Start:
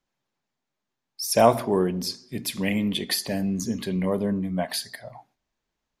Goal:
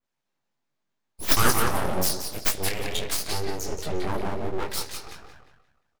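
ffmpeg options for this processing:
-filter_complex "[0:a]asplit=3[a][b][c];[a]afade=t=out:st=1.27:d=0.02[d];[b]aemphasis=mode=production:type=50fm,afade=t=in:st=1.27:d=0.02,afade=t=out:st=2.52:d=0.02[e];[c]afade=t=in:st=2.52:d=0.02[f];[d][e][f]amix=inputs=3:normalize=0,asplit=2[g][h];[h]adelay=176,lowpass=f=4k:p=1,volume=-3.5dB,asplit=2[i][j];[j]adelay=176,lowpass=f=4k:p=1,volume=0.4,asplit=2[k][l];[l]adelay=176,lowpass=f=4k:p=1,volume=0.4,asplit=2[m][n];[n]adelay=176,lowpass=f=4k:p=1,volume=0.4,asplit=2[o][p];[p]adelay=176,lowpass=f=4k:p=1,volume=0.4[q];[i][k][m][o][q]amix=inputs=5:normalize=0[r];[g][r]amix=inputs=2:normalize=0,flanger=delay=19:depth=4:speed=0.83,aeval=exprs='abs(val(0))':c=same,adynamicequalizer=threshold=0.00708:dfrequency=3500:dqfactor=0.7:tfrequency=3500:tqfactor=0.7:attack=5:release=100:ratio=0.375:range=2:mode=boostabove:tftype=highshelf,volume=1.5dB"

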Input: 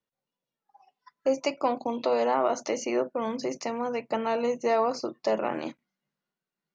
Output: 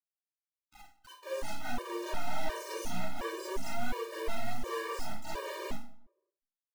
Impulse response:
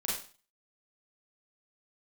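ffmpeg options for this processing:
-filter_complex "[0:a]highpass=f=300:p=1,highshelf=f=2.5k:g=-8,aecho=1:1:4.9:0.78,acompressor=threshold=-27dB:ratio=3,volume=33.5dB,asoftclip=hard,volume=-33.5dB,asplit=2[a][b];[b]asetrate=66075,aresample=44100,atempo=0.66742,volume=-3dB[c];[a][c]amix=inputs=2:normalize=0,acrusher=bits=5:dc=4:mix=0:aa=0.000001,asplit=2[d][e];[e]adelay=174,lowpass=f=980:p=1,volume=-21dB,asplit=2[f][g];[g]adelay=174,lowpass=f=980:p=1,volume=0.39,asplit=2[h][i];[i]adelay=174,lowpass=f=980:p=1,volume=0.39[j];[d][f][h][j]amix=inputs=4:normalize=0[k];[1:a]atrim=start_sample=2205[l];[k][l]afir=irnorm=-1:irlink=0,afftfilt=real='re*gt(sin(2*PI*1.4*pts/sr)*(1-2*mod(floor(b*sr/1024/310),2)),0)':imag='im*gt(sin(2*PI*1.4*pts/sr)*(1-2*mod(floor(b*sr/1024/310),2)),0)':win_size=1024:overlap=0.75"

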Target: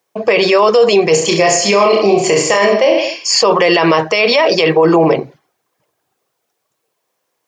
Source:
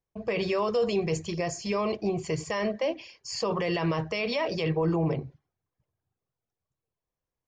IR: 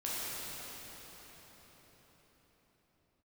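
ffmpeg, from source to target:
-filter_complex "[0:a]highpass=380,asettb=1/sr,asplit=3[a][b][c];[a]atrim=end=1.114[d];[b]atrim=start=1.11:end=3.28,asetpts=PTS-STARTPTS,afade=t=in:d=0.004:c=qsin,afade=t=out:st=2.166:d=0.004:c=qsin,aecho=1:1:30|66|109.2|161|223.2:0.631|0.398|0.251|0.158|0.1,atrim=end_sample=95697[e];[c]atrim=start=3.276[f];[d][e]acrossfade=d=0.004:c1=hsin:c2=qsin[g];[g][f]acrossfade=d=0.004:c1=qsin:c2=hsin,alimiter=level_in=23.5dB:limit=-1dB:release=50:level=0:latency=1,volume=-1dB"

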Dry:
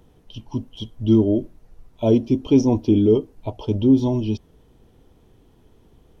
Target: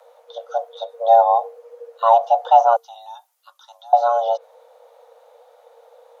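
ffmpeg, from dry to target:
-filter_complex "[0:a]asettb=1/sr,asplit=3[a][b][c];[a]atrim=end=2.764[d];[b]atrim=start=2.76:end=3.93,asetpts=PTS-STARTPTS,afade=t=in:d=0.004:c=qsin,afade=t=out:st=1.166:d=0.004:c=qsin,aderivative[e];[c]atrim=start=3.926[f];[d][e]acrossfade=d=0.004:c1=hsin:c2=qsin[g];[g][f]acrossfade=d=0.004:c1=qsin:c2=hsin,acrossover=split=3000[h][i];[i]acompressor=threshold=-54dB:ratio=4:attack=1:release=60[j];[h][j]amix=inputs=2:normalize=0,afreqshift=460,volume=3dB"

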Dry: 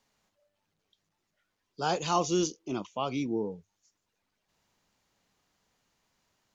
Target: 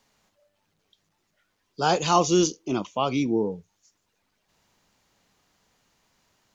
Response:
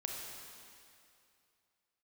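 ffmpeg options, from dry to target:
-filter_complex "[0:a]asplit=2[a][b];[1:a]atrim=start_sample=2205,atrim=end_sample=3969[c];[b][c]afir=irnorm=-1:irlink=0,volume=-20dB[d];[a][d]amix=inputs=2:normalize=0,volume=6.5dB"

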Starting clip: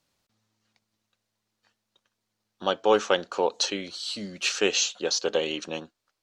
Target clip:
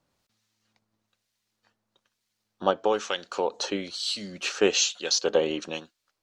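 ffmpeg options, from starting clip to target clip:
-filter_complex "[0:a]asplit=3[a][b][c];[a]afade=t=out:st=2.7:d=0.02[d];[b]acompressor=threshold=-23dB:ratio=3,afade=t=in:st=2.7:d=0.02,afade=t=out:st=3.52:d=0.02[e];[c]afade=t=in:st=3.52:d=0.02[f];[d][e][f]amix=inputs=3:normalize=0,acrossover=split=1600[g][h];[g]aeval=exprs='val(0)*(1-0.7/2+0.7/2*cos(2*PI*1.1*n/s))':c=same[i];[h]aeval=exprs='val(0)*(1-0.7/2-0.7/2*cos(2*PI*1.1*n/s))':c=same[j];[i][j]amix=inputs=2:normalize=0,volume=4dB"

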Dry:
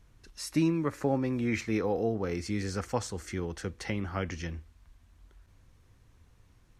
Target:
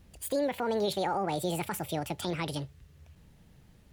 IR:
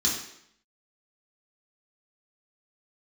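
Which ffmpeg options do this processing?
-af "alimiter=limit=-23dB:level=0:latency=1:release=53,asetrate=76440,aresample=44100,volume=2dB"

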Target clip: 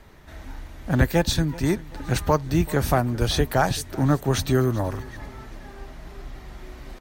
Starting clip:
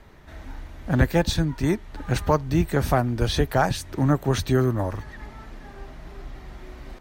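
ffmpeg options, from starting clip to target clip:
-af "highshelf=f=5.2k:g=6,aecho=1:1:383|766|1149:0.1|0.042|0.0176"

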